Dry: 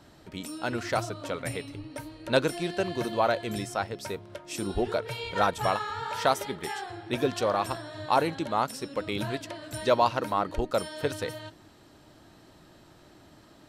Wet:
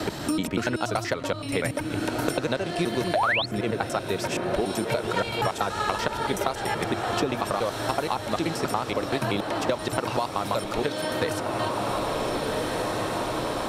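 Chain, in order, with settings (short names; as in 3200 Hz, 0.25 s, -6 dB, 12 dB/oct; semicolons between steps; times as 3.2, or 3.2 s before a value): slices in reverse order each 95 ms, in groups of 3; compressor, threshold -27 dBFS, peak gain reduction 10 dB; diffused feedback echo 1.529 s, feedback 59%, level -9 dB; painted sound rise, 3.14–3.46, 560–4700 Hz -24 dBFS; three-band squash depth 100%; gain +5 dB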